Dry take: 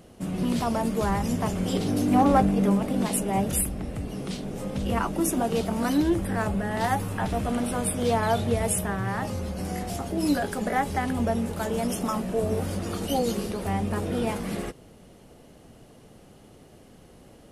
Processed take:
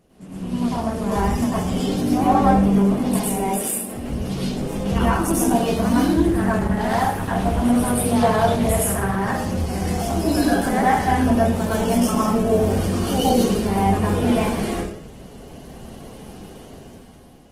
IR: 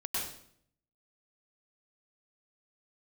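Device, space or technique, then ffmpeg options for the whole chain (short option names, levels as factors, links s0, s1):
speakerphone in a meeting room: -filter_complex "[0:a]asettb=1/sr,asplit=3[s0][s1][s2];[s0]atrim=end=3.334[s3];[s1]atrim=start=3.33:end=3.95,asetpts=PTS-STARTPTS,afade=t=in:d=0.004:c=qsin,afade=t=out:st=0.616:d=0.004:c=qsin,highpass=f=230:w=0.5412,highpass=f=230:w=1.3066[s4];[s2]atrim=start=3.946[s5];[s3][s4]acrossfade=d=0.004:c1=hsin:c2=qsin[s6];[s6][s5]acrossfade=d=0.004:c1=qsin:c2=hsin[s7];[1:a]atrim=start_sample=2205[s8];[s7][s8]afir=irnorm=-1:irlink=0,dynaudnorm=f=450:g=5:m=5.01,volume=0.596" -ar 48000 -c:a libopus -b:a 16k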